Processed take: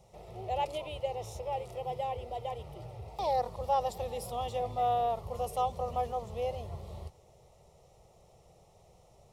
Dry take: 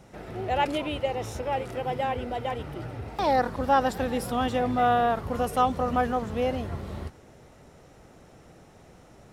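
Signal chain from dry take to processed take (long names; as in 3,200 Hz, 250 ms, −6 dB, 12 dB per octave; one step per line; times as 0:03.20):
phaser with its sweep stopped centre 650 Hz, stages 4
level −5.5 dB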